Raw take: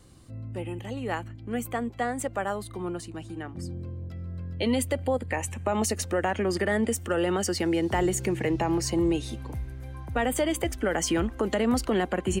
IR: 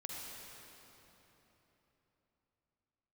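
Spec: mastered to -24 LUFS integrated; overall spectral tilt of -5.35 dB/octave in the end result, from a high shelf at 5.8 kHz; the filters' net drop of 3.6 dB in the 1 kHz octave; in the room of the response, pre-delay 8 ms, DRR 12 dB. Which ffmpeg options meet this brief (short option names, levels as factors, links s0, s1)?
-filter_complex "[0:a]equalizer=f=1000:t=o:g=-5,highshelf=f=5800:g=-6,asplit=2[s0][s1];[1:a]atrim=start_sample=2205,adelay=8[s2];[s1][s2]afir=irnorm=-1:irlink=0,volume=0.282[s3];[s0][s3]amix=inputs=2:normalize=0,volume=1.88"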